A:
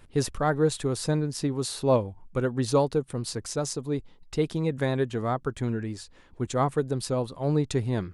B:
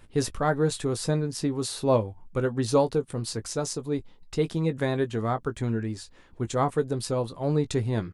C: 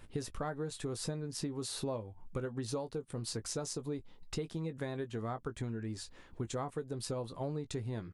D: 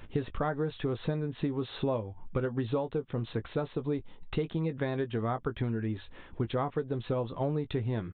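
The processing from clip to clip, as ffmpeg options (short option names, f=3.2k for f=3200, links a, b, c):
-filter_complex "[0:a]asplit=2[a][b];[b]adelay=18,volume=-10.5dB[c];[a][c]amix=inputs=2:normalize=0"
-af "acompressor=threshold=-33dB:ratio=10,volume=-1.5dB"
-af "aresample=8000,aresample=44100,volume=7dB"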